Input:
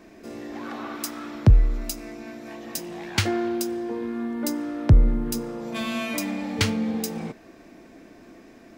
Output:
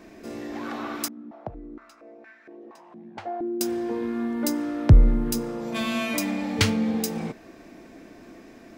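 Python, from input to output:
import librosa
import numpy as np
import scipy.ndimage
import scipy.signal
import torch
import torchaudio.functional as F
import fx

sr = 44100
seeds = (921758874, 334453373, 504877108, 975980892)

y = fx.filter_held_bandpass(x, sr, hz=4.3, low_hz=230.0, high_hz=1700.0, at=(1.08, 3.61))
y = y * 10.0 ** (1.5 / 20.0)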